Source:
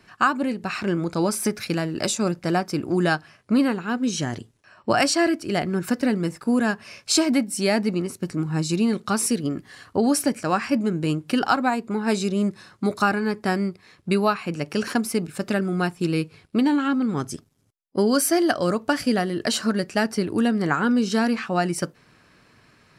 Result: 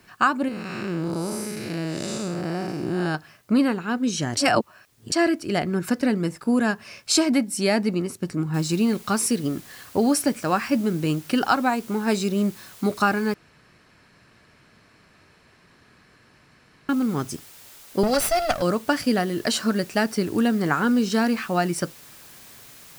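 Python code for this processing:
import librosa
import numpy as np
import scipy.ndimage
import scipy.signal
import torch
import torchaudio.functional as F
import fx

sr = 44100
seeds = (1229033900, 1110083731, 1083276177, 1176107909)

y = fx.spec_blur(x, sr, span_ms=259.0, at=(0.48, 3.15))
y = fx.noise_floor_step(y, sr, seeds[0], at_s=8.54, before_db=-65, after_db=-47, tilt_db=0.0)
y = fx.lower_of_two(y, sr, delay_ms=1.5, at=(18.03, 18.62))
y = fx.edit(y, sr, fx.reverse_span(start_s=4.37, length_s=0.75),
    fx.room_tone_fill(start_s=13.34, length_s=3.55), tone=tone)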